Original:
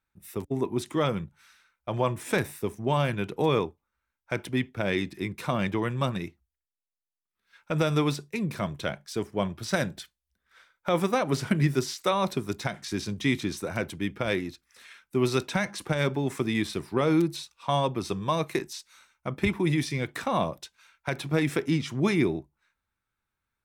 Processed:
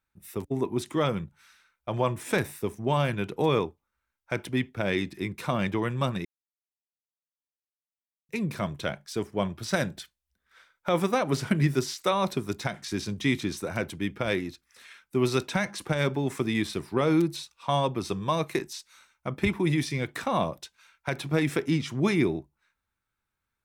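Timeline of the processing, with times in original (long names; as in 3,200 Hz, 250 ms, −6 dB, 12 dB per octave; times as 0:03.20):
0:06.25–0:08.29: silence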